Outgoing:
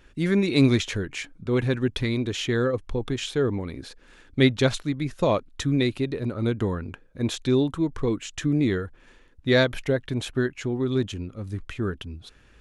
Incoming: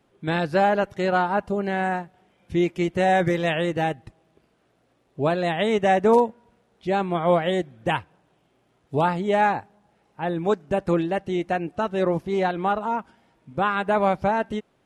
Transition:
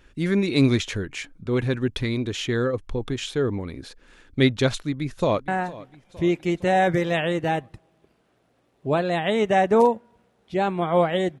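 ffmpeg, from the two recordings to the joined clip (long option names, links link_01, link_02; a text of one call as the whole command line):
ffmpeg -i cue0.wav -i cue1.wav -filter_complex "[0:a]apad=whole_dur=11.4,atrim=end=11.4,atrim=end=5.482[link_01];[1:a]atrim=start=1.808:end=7.73[link_02];[link_01][link_02]acrossfade=duration=0.004:curve1=hsin:curve2=hsin,asplit=2[link_03][link_04];[link_04]afade=type=in:start_time=4.71:duration=0.01,afade=type=out:start_time=5.48:duration=0.01,aecho=0:1:460|920|1380|1840|2300:0.125893|0.0755355|0.0453213|0.0271928|0.0163157[link_05];[link_03][link_05]amix=inputs=2:normalize=0" out.wav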